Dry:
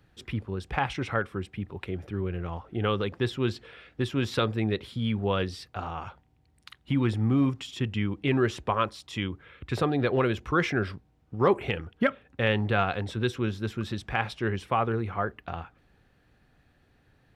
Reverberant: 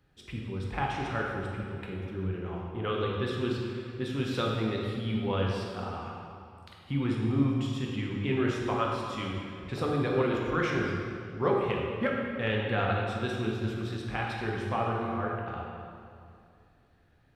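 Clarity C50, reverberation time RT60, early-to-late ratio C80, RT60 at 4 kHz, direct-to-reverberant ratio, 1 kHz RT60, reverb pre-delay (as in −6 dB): 0.0 dB, 2.4 s, 2.0 dB, 1.7 s, −2.5 dB, 2.3 s, 9 ms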